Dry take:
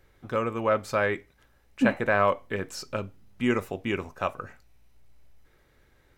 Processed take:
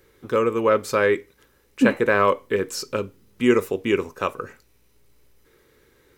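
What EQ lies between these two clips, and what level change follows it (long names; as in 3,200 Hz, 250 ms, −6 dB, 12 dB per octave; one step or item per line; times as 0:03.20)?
spectral tilt +2.5 dB per octave
low shelf with overshoot 560 Hz +7 dB, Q 3
parametric band 1,000 Hz +6 dB 0.84 octaves
+1.5 dB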